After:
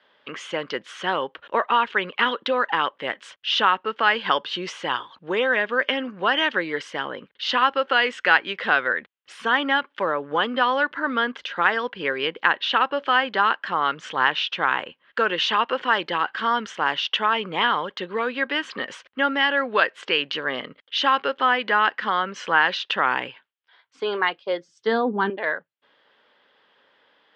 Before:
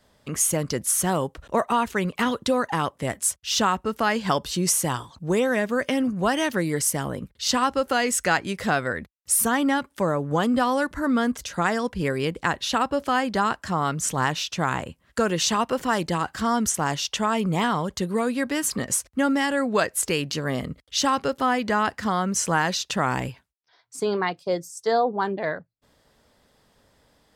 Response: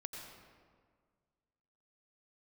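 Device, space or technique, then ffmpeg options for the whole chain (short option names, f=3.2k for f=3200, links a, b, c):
phone earpiece: -filter_complex "[0:a]asettb=1/sr,asplit=3[a][b][c];[a]atrim=end=24.684[d];[b]atrim=start=24.68:end=25.3,asetpts=PTS-STARTPTS,afade=t=in:d=0.004:c=qsin,afade=t=out:st=0.616:d=0.004:c=qsin,lowshelf=f=370:t=q:w=1.5:g=13.5[e];[c]atrim=start=25.296[f];[d][e]acrossfade=d=0.004:c1=hsin:c2=qsin[g];[g][f]acrossfade=d=0.004:c1=qsin:c2=hsin,highpass=500,equalizer=f=680:t=q:w=4:g=-7,equalizer=f=1.6k:t=q:w=4:g=4,equalizer=f=3.1k:t=q:w=4:g=7,lowpass=f=3.4k:w=0.5412,lowpass=f=3.4k:w=1.3066,volume=4dB"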